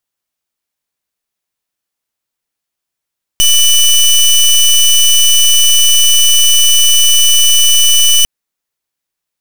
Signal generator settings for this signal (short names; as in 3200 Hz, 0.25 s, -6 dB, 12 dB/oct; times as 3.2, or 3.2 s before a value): pulse 2980 Hz, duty 20% -7 dBFS 4.85 s